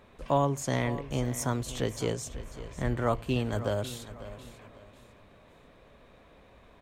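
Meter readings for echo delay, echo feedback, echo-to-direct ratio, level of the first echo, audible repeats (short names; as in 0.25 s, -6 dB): 0.546 s, 33%, -14.0 dB, -14.5 dB, 3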